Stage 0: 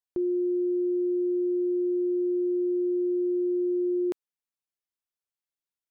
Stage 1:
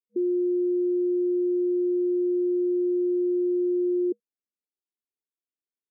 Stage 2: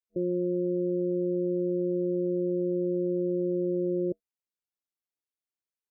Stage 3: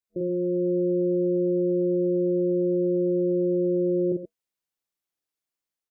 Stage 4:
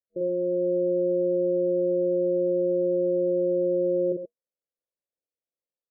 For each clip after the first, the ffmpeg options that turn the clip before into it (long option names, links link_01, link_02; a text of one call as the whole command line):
ffmpeg -i in.wav -af "afftfilt=real='re*between(b*sr/4096,210,480)':imag='im*between(b*sr/4096,210,480)':win_size=4096:overlap=0.75,volume=2dB" out.wav
ffmpeg -i in.wav -af "tremolo=f=180:d=0.889" out.wav
ffmpeg -i in.wav -filter_complex "[0:a]dynaudnorm=framelen=350:gausssize=3:maxgain=3dB,asplit=2[link_01][link_02];[link_02]aecho=0:1:41|47|111|117|132:0.355|0.668|0.141|0.126|0.299[link_03];[link_01][link_03]amix=inputs=2:normalize=0" out.wav
ffmpeg -i in.wav -af "lowpass=frequency=540:width_type=q:width=5.1,volume=-8.5dB" out.wav